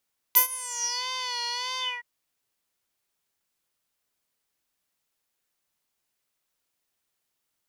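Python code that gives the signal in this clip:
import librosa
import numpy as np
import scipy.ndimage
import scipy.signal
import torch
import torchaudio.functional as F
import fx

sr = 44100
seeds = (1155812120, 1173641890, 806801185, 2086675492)

y = fx.sub_patch_vibrato(sr, seeds[0], note=83, wave='triangle', wave2='square', interval_st=12, detune_cents=16, level2_db=-16, sub_db=-11.5, noise_db=-30.0, kind='bandpass', cutoff_hz=1800.0, q=9.6, env_oct=3.0, env_decay_s=0.67, env_sustain_pct=40, attack_ms=21.0, decay_s=0.1, sustain_db=-23.0, release_s=0.23, note_s=1.44, lfo_hz=1.6, vibrato_cents=67)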